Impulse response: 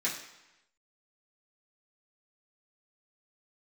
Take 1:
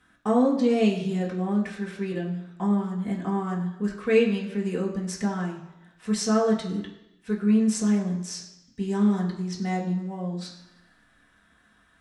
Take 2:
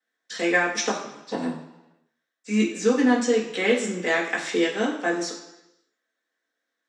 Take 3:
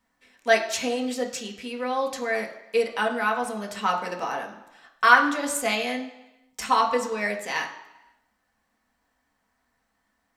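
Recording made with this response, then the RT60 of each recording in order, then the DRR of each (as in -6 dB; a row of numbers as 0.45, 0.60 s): 2; 0.95, 0.95, 0.95 s; -4.0, -9.0, 1.0 dB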